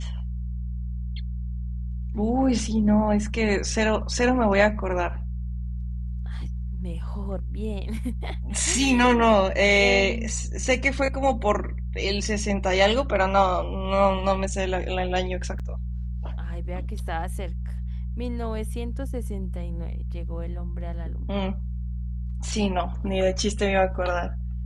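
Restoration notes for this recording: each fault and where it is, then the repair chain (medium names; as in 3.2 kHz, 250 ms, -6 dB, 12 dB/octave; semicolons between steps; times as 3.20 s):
hum 60 Hz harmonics 3 -30 dBFS
15.59–15.60 s: dropout 6.8 ms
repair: de-hum 60 Hz, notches 3; interpolate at 15.59 s, 6.8 ms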